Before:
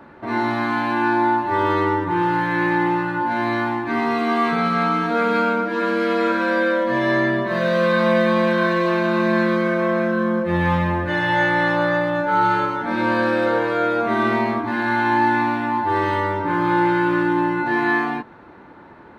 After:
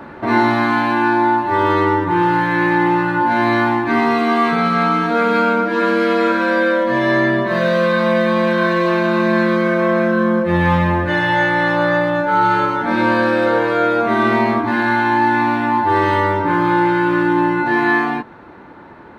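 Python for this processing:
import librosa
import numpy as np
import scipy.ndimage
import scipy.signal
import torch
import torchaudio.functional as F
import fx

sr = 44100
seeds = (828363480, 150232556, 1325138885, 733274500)

y = fx.rider(x, sr, range_db=10, speed_s=0.5)
y = F.gain(torch.from_numpy(y), 4.0).numpy()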